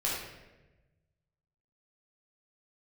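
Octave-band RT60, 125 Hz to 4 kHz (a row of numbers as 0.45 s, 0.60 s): 2.0 s, 1.4 s, 1.3 s, 0.95 s, 1.0 s, 0.75 s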